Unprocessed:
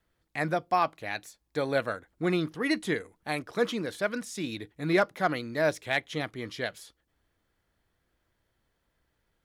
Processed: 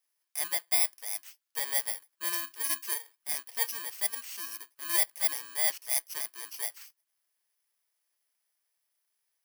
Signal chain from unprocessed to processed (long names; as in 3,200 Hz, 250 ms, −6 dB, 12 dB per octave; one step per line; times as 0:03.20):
samples in bit-reversed order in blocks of 32 samples
high-pass filter 1,300 Hz 12 dB per octave